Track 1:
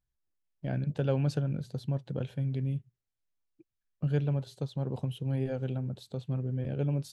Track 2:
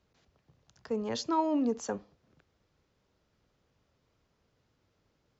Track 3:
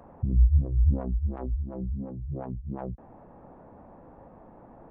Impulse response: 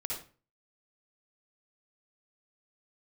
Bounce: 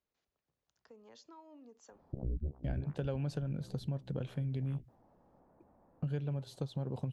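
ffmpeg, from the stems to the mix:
-filter_complex "[0:a]agate=range=-33dB:threshold=-50dB:ratio=3:detection=peak,adelay=2000,volume=1.5dB[link_01];[1:a]equalizer=frequency=110:width=0.62:gain=-9.5,acompressor=threshold=-40dB:ratio=3,volume=-16dB[link_02];[2:a]acontrast=53,aeval=exprs='0.501*(cos(1*acos(clip(val(0)/0.501,-1,1)))-cos(1*PI/2))+0.0631*(cos(4*acos(clip(val(0)/0.501,-1,1)))-cos(4*PI/2))+0.1*(cos(7*acos(clip(val(0)/0.501,-1,1)))-cos(7*PI/2))':channel_layout=same,adelay=1900,volume=-14.5dB[link_03];[link_01][link_02][link_03]amix=inputs=3:normalize=0,acompressor=threshold=-34dB:ratio=4"

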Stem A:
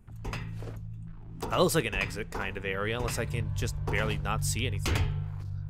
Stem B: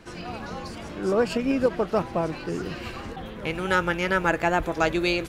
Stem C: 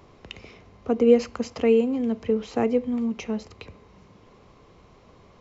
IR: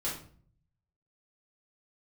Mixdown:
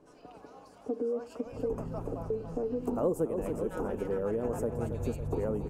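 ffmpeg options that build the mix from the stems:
-filter_complex "[0:a]firequalizer=gain_entry='entry(850,0);entry(3700,-24);entry(6700,-5)':delay=0.05:min_phase=1,adelay=1450,volume=-0.5dB,asplit=2[link_01][link_02];[link_02]volume=-11dB[link_03];[1:a]highpass=frequency=710:width=0.5412,highpass=frequency=710:width=1.3066,volume=-15.5dB,asplit=2[link_04][link_05];[link_05]volume=-8dB[link_06];[2:a]lowpass=frequency=1400:poles=1,aecho=1:1:6.7:0.65,alimiter=limit=-16.5dB:level=0:latency=1,volume=-14dB,asplit=3[link_07][link_08][link_09];[link_07]atrim=end=1.73,asetpts=PTS-STARTPTS,afade=type=out:start_time=1.726:duration=0.004:curve=hsin[link_10];[link_08]atrim=start=1.73:end=2.3,asetpts=PTS-STARTPTS,volume=0[link_11];[link_09]atrim=start=2.3,asetpts=PTS-STARTPTS,afade=type=in:duration=0.004:curve=hsin[link_12];[link_10][link_11][link_12]concat=n=3:v=0:a=1[link_13];[link_03][link_06]amix=inputs=2:normalize=0,aecho=0:1:278|556|834|1112|1390|1668|1946:1|0.51|0.26|0.133|0.0677|0.0345|0.0176[link_14];[link_01][link_04][link_13][link_14]amix=inputs=4:normalize=0,equalizer=frequency=125:width_type=o:width=1:gain=-4,equalizer=frequency=250:width_type=o:width=1:gain=11,equalizer=frequency=500:width_type=o:width=1:gain=8,equalizer=frequency=2000:width_type=o:width=1:gain=-11,equalizer=frequency=4000:width_type=o:width=1:gain=-8,acompressor=threshold=-31dB:ratio=2.5"

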